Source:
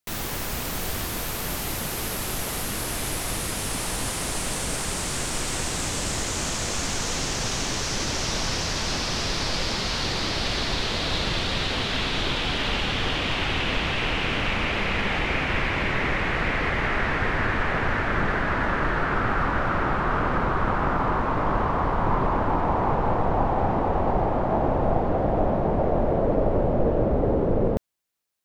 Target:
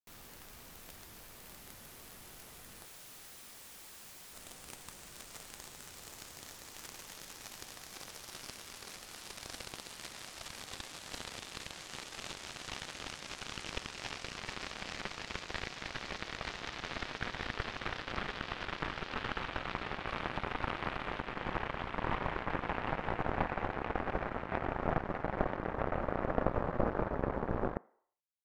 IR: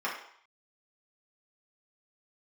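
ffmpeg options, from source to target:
-filter_complex "[0:a]asettb=1/sr,asplit=3[link_01][link_02][link_03];[link_01]atrim=end=2.854[link_04];[link_02]atrim=start=2.85:end=4.33,asetpts=PTS-STARTPTS,afade=type=in:duration=0.004:curve=qsin,afade=type=out:start_time=1.476:duration=0.004:curve=qsin,aeval=exprs='(mod(20*val(0)+1,2)-1)/20':channel_layout=same[link_05];[link_03]atrim=start=4.326[link_06];[link_04][link_05]acrossfade=duration=0.004:curve1=hsin:curve2=qsin[link_07];[link_07][link_06]acrossfade=duration=0.004:curve1=qsin:curve2=hsin,aeval=exprs='0.376*(cos(1*acos(clip(val(0)/0.376,-1,1)))-cos(1*PI/2))+0.106*(cos(3*acos(clip(val(0)/0.376,-1,1)))-cos(3*PI/2))+0.0168*(cos(7*acos(clip(val(0)/0.376,-1,1)))-cos(7*PI/2))':channel_layout=same,asettb=1/sr,asplit=3[link_08][link_09][link_10];[link_08]atrim=end=20.074[link_11];[link_09]atrim=start=20.07:end=21.2,asetpts=PTS-STARTPTS,afade=type=in:duration=0.004:curve=qsin,afade=type=out:start_time=1.126:duration=0.004:curve=qsin,equalizer=frequency=10000:width=3.7:gain=6.5[link_12];[link_10]atrim=start=21.196[link_13];[link_11][link_12]acrossfade=duration=0.004:curve1=hsin:curve2=qsin[link_14];[link_14][link_13]acrossfade=duration=0.004:curve1=qsin:curve2=hsin,asplit=2[link_15][link_16];[1:a]atrim=start_sample=2205,asetrate=41454,aresample=44100[link_17];[link_16][link_17]afir=irnorm=-1:irlink=0,volume=-27.5dB[link_18];[link_15][link_18]amix=inputs=2:normalize=0,volume=-3.5dB"

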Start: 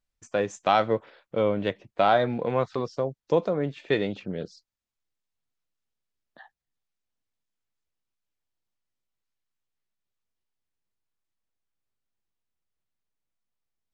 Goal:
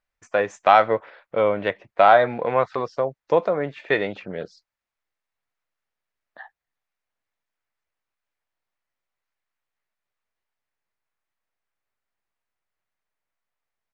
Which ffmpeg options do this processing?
ffmpeg -i in.wav -af "firequalizer=gain_entry='entry(230,0);entry(620,10);entry(2000,12);entry(3100,4);entry(7400,-1)':delay=0.05:min_phase=1,volume=-3dB" out.wav

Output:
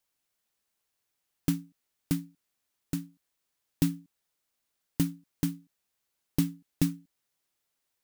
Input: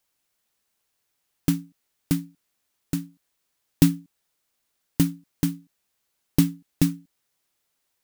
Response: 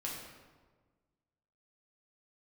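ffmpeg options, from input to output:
-af "alimiter=limit=-6dB:level=0:latency=1:release=259,volume=-5.5dB"

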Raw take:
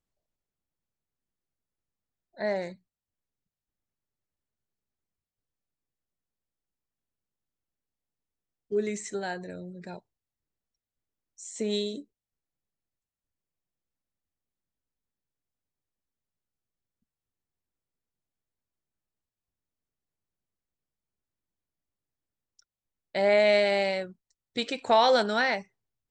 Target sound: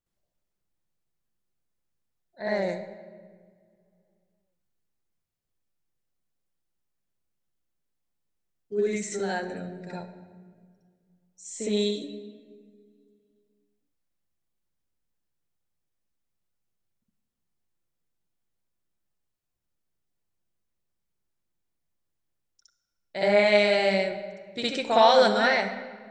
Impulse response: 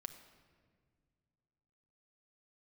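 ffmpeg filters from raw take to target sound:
-filter_complex "[0:a]asplit=2[link_01][link_02];[1:a]atrim=start_sample=2205,adelay=63[link_03];[link_02][link_03]afir=irnorm=-1:irlink=0,volume=10.5dB[link_04];[link_01][link_04]amix=inputs=2:normalize=0,volume=-4dB"

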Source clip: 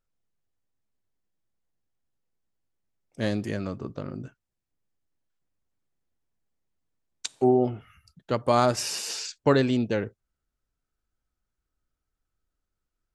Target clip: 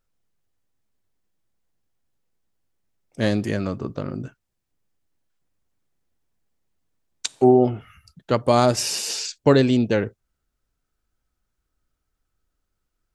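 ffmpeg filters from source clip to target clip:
ffmpeg -i in.wav -filter_complex "[0:a]asettb=1/sr,asplit=3[link_01][link_02][link_03];[link_01]atrim=end=8.404[link_04];[link_02]atrim=start=8.4:end=9.84,asetpts=PTS-STARTPTS,afade=type=in:duration=0.004:curve=qsin,afade=type=out:start_time=1.436:duration=0.004:curve=qsin,equalizer=frequency=1300:width=0.94:gain=-5[link_05];[link_03]atrim=start=9.836[link_06];[link_04][link_05]acrossfade=duration=0.004:curve1=hsin:curve2=qsin[link_07];[link_07][link_06]acrossfade=duration=0.004:curve1=qsin:curve2=hsin,volume=6dB" out.wav

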